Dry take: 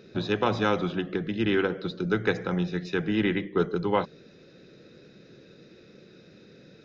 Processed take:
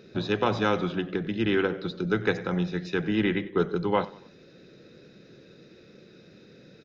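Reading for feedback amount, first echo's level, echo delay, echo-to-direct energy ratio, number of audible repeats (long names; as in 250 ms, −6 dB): 43%, −20.0 dB, 94 ms, −19.0 dB, 3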